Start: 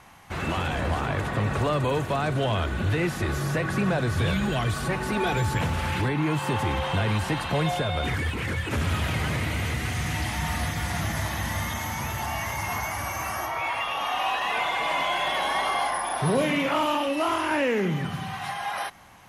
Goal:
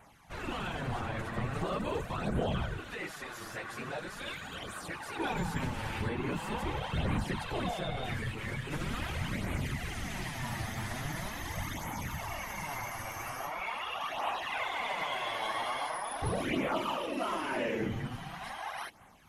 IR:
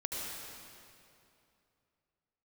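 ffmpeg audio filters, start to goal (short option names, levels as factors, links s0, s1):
-filter_complex "[0:a]asettb=1/sr,asplit=3[s0][s1][s2];[s0]atrim=end=2.804[s3];[s1]atrim=start=2.8:end=5.19,asetpts=PTS-STARTPTS,afade=t=in:d=0.004:c=qsin,afade=t=out:st=2.386:d=0.004:c=qsin,highpass=f=780:p=1[s4];[s2]atrim=start=5.186[s5];[s3][s4]acrossfade=d=0.004:c1=hsin:c2=qsin[s6];[s6][s5]acrossfade=d=0.004:c1=qsin:c2=hsin,afftfilt=real='hypot(re,im)*cos(2*PI*random(0))':imag='hypot(re,im)*sin(2*PI*random(1))':win_size=512:overlap=0.75,flanger=delay=0.1:depth=9:regen=0:speed=0.42:shape=sinusoidal"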